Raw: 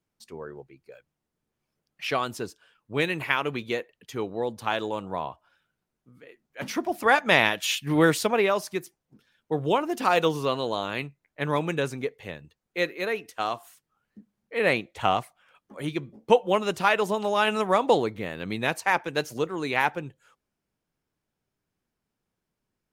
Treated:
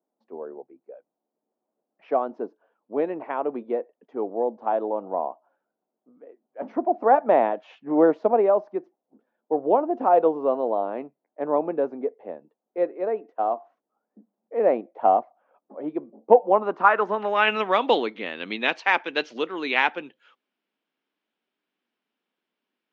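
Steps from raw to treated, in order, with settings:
low-pass filter sweep 700 Hz → 3,200 Hz, 0:16.38–0:17.74
elliptic band-pass filter 240–6,200 Hz, stop band 40 dB
harmonic generator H 3 −37 dB, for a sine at −2 dBFS
level +1 dB

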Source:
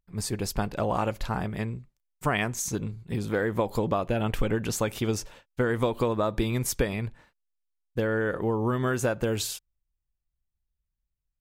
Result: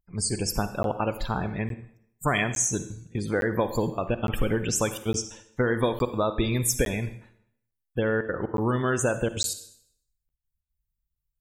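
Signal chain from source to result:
high-shelf EQ 4,400 Hz +10.5 dB
spectral peaks only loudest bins 64
gate pattern "xxxxxxxx.xx.x" 181 BPM −24 dB
convolution reverb RT60 0.70 s, pre-delay 37 ms, DRR 11 dB
regular buffer underruns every 0.86 s, samples 512, zero, from 0:00.83
level +1 dB

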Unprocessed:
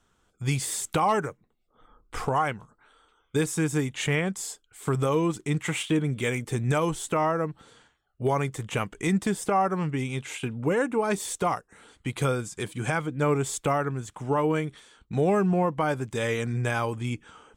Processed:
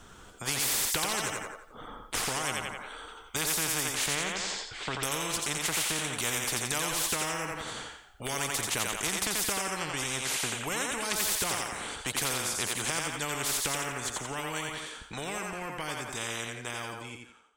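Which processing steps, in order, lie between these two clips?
fade-out on the ending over 5.41 s
0:04.10–0:05.03: low-pass filter 4,500 Hz 24 dB per octave
feedback echo with a high-pass in the loop 87 ms, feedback 37%, high-pass 420 Hz, level −4.5 dB
every bin compressed towards the loudest bin 4 to 1

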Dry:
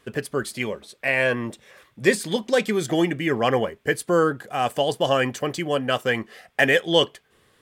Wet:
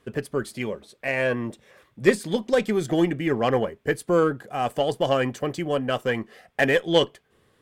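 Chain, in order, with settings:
tilt shelving filter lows +3.5 dB
harmonic generator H 3 −20 dB, 6 −33 dB, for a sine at −3.5 dBFS

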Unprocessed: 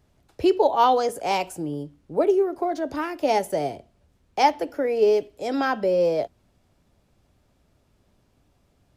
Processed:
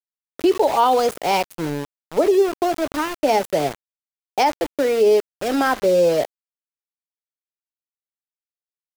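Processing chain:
centre clipping without the shift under −29.5 dBFS
brickwall limiter −13.5 dBFS, peak gain reduction 7 dB
level +5 dB

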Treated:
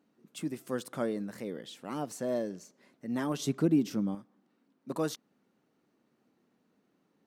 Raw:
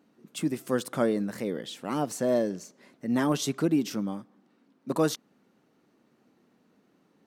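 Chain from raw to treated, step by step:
0:03.39–0:04.15: low-shelf EQ 490 Hz +8.5 dB
level −7 dB

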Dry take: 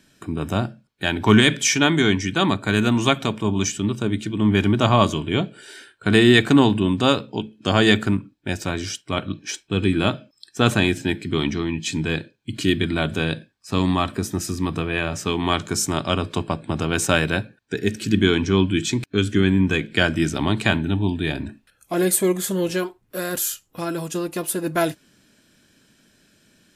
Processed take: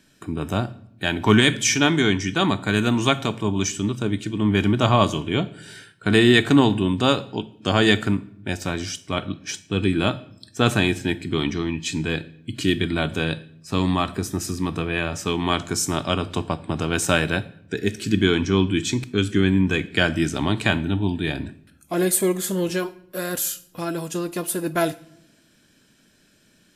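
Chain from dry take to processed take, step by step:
on a send: high-shelf EQ 4,000 Hz +9 dB + convolution reverb RT60 0.75 s, pre-delay 7 ms, DRR 15.5 dB
on the sum: level −1 dB

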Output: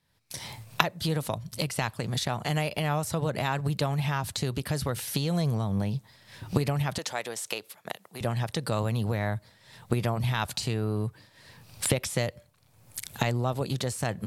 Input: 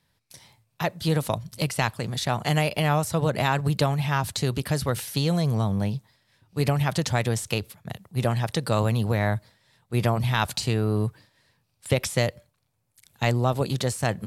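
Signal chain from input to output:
camcorder AGC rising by 41 dB per second
0:03.36–0:04.24: surface crackle 83 per second → 22 per second −44 dBFS
0:06.98–0:08.21: high-pass filter 430 Hz 12 dB per octave
level −5.5 dB

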